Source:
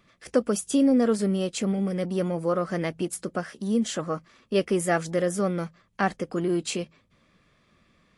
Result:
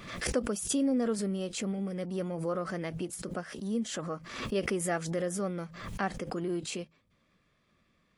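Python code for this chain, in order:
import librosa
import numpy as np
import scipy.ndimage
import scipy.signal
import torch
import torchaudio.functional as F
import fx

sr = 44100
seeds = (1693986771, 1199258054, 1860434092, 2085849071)

y = fx.pre_swell(x, sr, db_per_s=65.0)
y = F.gain(torch.from_numpy(y), -8.0).numpy()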